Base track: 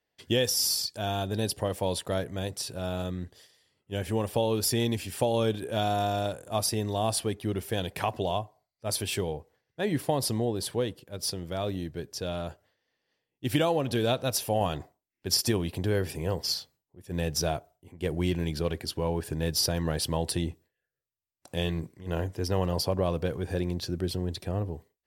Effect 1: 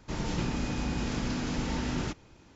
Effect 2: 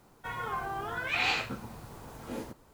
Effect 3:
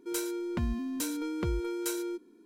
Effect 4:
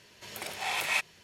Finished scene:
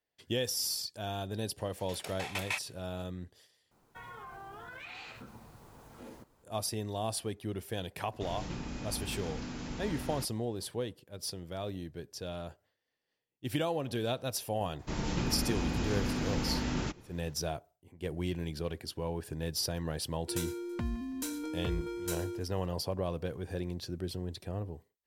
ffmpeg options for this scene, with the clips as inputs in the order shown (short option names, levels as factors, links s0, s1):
-filter_complex "[1:a]asplit=2[s0][s1];[0:a]volume=0.447[s2];[4:a]aeval=exprs='val(0)*pow(10,-18*if(lt(mod(6.5*n/s,1),2*abs(6.5)/1000),1-mod(6.5*n/s,1)/(2*abs(6.5)/1000),(mod(6.5*n/s,1)-2*abs(6.5)/1000)/(1-2*abs(6.5)/1000))/20)':c=same[s3];[2:a]acompressor=threshold=0.0178:ratio=6:attack=3.2:release=140:knee=1:detection=peak[s4];[3:a]aecho=1:1:164|328|492|656:0.0841|0.0438|0.0228|0.0118[s5];[s2]asplit=2[s6][s7];[s6]atrim=end=3.714[s8];[s4]atrim=end=2.73,asetpts=PTS-STARTPTS,volume=0.398[s9];[s7]atrim=start=6.436[s10];[s3]atrim=end=1.23,asetpts=PTS-STARTPTS,volume=0.794,afade=t=in:d=0.004:c=hsin,afade=t=out:st=1.226:d=0.004:c=hsin,adelay=1580[s11];[s0]atrim=end=2.55,asetpts=PTS-STARTPTS,volume=0.376,afade=t=in:d=0.004:c=hsin,afade=t=out:st=2.546:d=0.004:c=hsin,adelay=8120[s12];[s1]atrim=end=2.55,asetpts=PTS-STARTPTS,volume=0.841,afade=t=in:d=0.004:c=hsin,afade=t=out:st=2.546:d=0.004:c=hsin,adelay=14790[s13];[s5]atrim=end=2.45,asetpts=PTS-STARTPTS,volume=0.631,afade=t=in:d=0.004:c=hsin,afade=t=out:st=2.446:d=0.004:c=hsin,adelay=20220[s14];[s8][s9]acrossfade=d=0.004:c1=hsin:c2=hsin[s15];[s15][s10]acrossfade=d=0.004:c1=hsin:c2=hsin[s16];[s16][s11][s12][s13][s14]amix=inputs=5:normalize=0"